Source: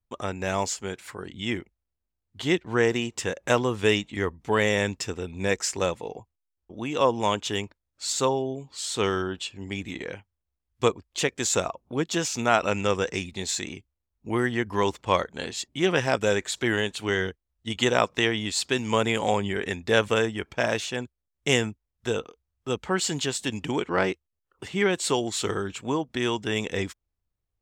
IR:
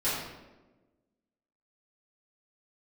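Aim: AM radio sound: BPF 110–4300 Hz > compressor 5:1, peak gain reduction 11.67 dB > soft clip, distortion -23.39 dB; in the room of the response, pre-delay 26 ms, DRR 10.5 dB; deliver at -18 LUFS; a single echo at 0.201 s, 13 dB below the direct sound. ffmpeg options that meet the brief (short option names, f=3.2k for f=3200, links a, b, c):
-filter_complex "[0:a]aecho=1:1:201:0.224,asplit=2[a][b];[1:a]atrim=start_sample=2205,adelay=26[c];[b][c]afir=irnorm=-1:irlink=0,volume=-20.5dB[d];[a][d]amix=inputs=2:normalize=0,highpass=110,lowpass=4.3k,acompressor=threshold=-27dB:ratio=5,asoftclip=threshold=-17dB,volume=15dB"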